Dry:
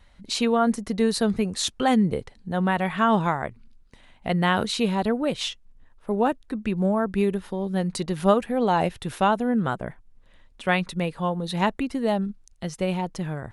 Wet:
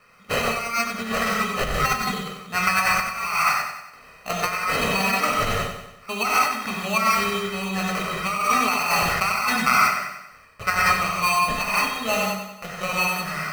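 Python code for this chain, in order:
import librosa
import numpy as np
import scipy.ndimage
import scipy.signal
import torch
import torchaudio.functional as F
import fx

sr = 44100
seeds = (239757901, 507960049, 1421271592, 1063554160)

y = fx.bandpass_edges(x, sr, low_hz=430.0, high_hz=5700.0)
y = fx.fixed_phaser(y, sr, hz=1900.0, stages=6)
y = fx.sample_hold(y, sr, seeds[0], rate_hz=3500.0, jitter_pct=0)
y = fx.peak_eq(y, sr, hz=750.0, db=-11.0, octaves=0.59)
y = fx.rev_gated(y, sr, seeds[1], gate_ms=200, shape='flat', drr_db=-3.0)
y = fx.over_compress(y, sr, threshold_db=-30.0, ratio=-0.5)
y = fx.peak_eq(y, sr, hz=1600.0, db=11.0, octaves=2.1)
y = y + 0.66 * np.pad(y, (int(1.6 * sr / 1000.0), 0))[:len(y)]
y = fx.echo_feedback(y, sr, ms=94, feedback_pct=50, wet_db=-8.0)
y = fx.sustainer(y, sr, db_per_s=21.0, at=(7.54, 9.82))
y = F.gain(torch.from_numpy(y), 1.5).numpy()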